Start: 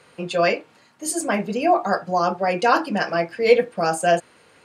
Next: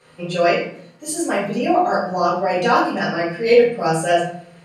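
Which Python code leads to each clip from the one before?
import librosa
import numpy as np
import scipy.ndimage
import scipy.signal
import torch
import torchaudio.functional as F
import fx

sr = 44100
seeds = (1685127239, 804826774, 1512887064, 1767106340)

y = fx.peak_eq(x, sr, hz=150.0, db=7.5, octaves=0.38)
y = fx.room_shoebox(y, sr, seeds[0], volume_m3=77.0, walls='mixed', distance_m=2.2)
y = F.gain(torch.from_numpy(y), -7.5).numpy()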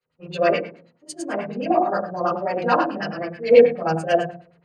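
y = fx.filter_lfo_lowpass(x, sr, shape='sine', hz=9.3, low_hz=480.0, high_hz=6200.0, q=1.0)
y = fx.band_widen(y, sr, depth_pct=70)
y = F.gain(torch.from_numpy(y), -3.5).numpy()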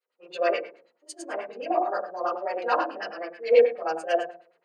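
y = scipy.signal.sosfilt(scipy.signal.butter(4, 370.0, 'highpass', fs=sr, output='sos'), x)
y = F.gain(torch.from_numpy(y), -5.0).numpy()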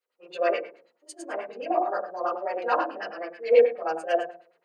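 y = fx.dynamic_eq(x, sr, hz=5100.0, q=0.96, threshold_db=-48.0, ratio=4.0, max_db=-5)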